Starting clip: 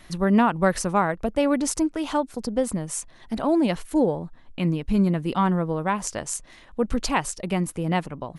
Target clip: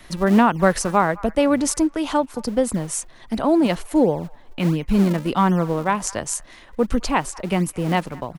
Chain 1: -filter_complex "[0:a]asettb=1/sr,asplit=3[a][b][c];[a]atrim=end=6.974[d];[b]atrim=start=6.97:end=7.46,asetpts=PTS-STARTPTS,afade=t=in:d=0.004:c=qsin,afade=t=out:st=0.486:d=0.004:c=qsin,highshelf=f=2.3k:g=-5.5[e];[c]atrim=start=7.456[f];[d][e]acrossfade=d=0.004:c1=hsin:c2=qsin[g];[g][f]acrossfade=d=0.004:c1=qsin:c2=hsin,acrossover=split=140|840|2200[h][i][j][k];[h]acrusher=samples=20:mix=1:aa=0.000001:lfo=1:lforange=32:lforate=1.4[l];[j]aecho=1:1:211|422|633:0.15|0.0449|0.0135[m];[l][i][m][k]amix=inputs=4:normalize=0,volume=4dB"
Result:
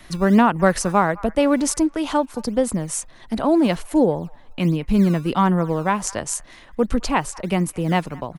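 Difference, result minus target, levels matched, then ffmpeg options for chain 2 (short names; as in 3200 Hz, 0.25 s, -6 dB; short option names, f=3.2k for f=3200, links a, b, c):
decimation with a swept rate: distortion -11 dB
-filter_complex "[0:a]asettb=1/sr,asplit=3[a][b][c];[a]atrim=end=6.974[d];[b]atrim=start=6.97:end=7.46,asetpts=PTS-STARTPTS,afade=t=in:d=0.004:c=qsin,afade=t=out:st=0.486:d=0.004:c=qsin,highshelf=f=2.3k:g=-5.5[e];[c]atrim=start=7.456[f];[d][e]acrossfade=d=0.004:c1=hsin:c2=qsin[g];[g][f]acrossfade=d=0.004:c1=qsin:c2=hsin,acrossover=split=140|840|2200[h][i][j][k];[h]acrusher=samples=69:mix=1:aa=0.000001:lfo=1:lforange=110:lforate=1.4[l];[j]aecho=1:1:211|422|633:0.15|0.0449|0.0135[m];[l][i][m][k]amix=inputs=4:normalize=0,volume=4dB"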